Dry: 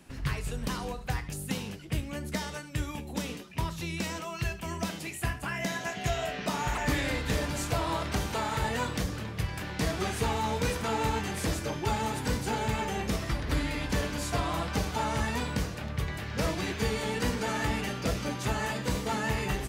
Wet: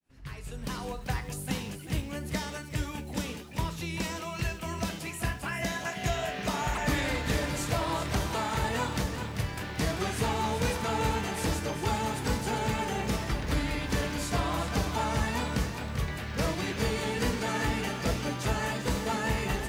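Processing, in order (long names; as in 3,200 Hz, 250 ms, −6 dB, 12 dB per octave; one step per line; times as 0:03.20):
fade in at the beginning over 0.95 s
feedback echo at a low word length 391 ms, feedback 35%, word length 9 bits, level −9 dB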